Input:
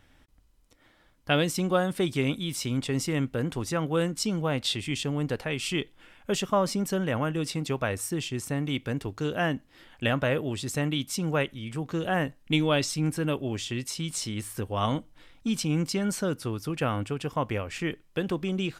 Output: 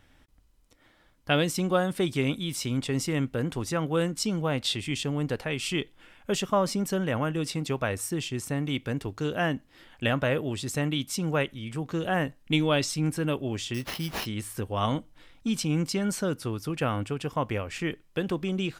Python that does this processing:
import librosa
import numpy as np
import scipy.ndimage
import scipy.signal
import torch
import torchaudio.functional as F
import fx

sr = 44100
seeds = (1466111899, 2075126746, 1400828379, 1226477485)

y = fx.sample_hold(x, sr, seeds[0], rate_hz=8200.0, jitter_pct=0, at=(13.74, 14.26))